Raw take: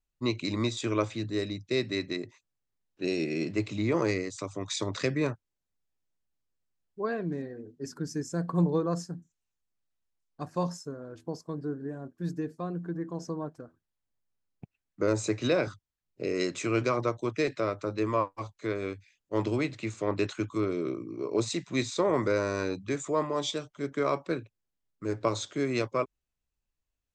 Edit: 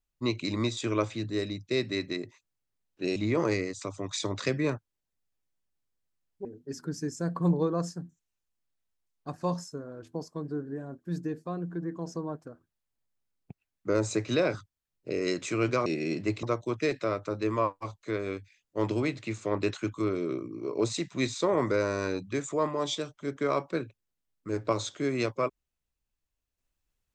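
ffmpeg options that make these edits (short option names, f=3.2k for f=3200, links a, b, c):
-filter_complex "[0:a]asplit=5[a][b][c][d][e];[a]atrim=end=3.162[f];[b]atrim=start=3.728:end=7.022[g];[c]atrim=start=7.578:end=16.992[h];[d]atrim=start=3.158:end=3.732[i];[e]atrim=start=16.988[j];[f][g]acrossfade=d=0.004:c1=hsin:c2=hsin[k];[k][h]acrossfade=d=0.004:c1=hsin:c2=hsin[l];[l][i]acrossfade=d=0.004:c1=hsin:c2=hsin[m];[m][j]acrossfade=d=0.004:c1=hsin:c2=hsin"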